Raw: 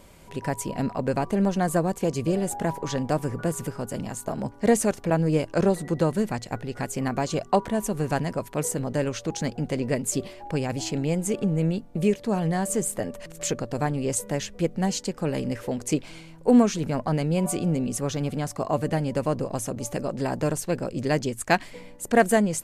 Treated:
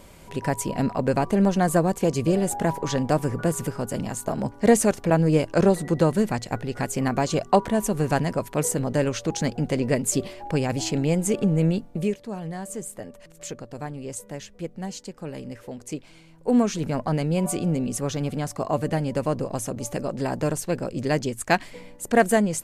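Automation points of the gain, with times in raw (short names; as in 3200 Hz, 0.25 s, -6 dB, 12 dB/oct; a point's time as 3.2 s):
11.83 s +3 dB
12.28 s -8 dB
16.14 s -8 dB
16.81 s +0.5 dB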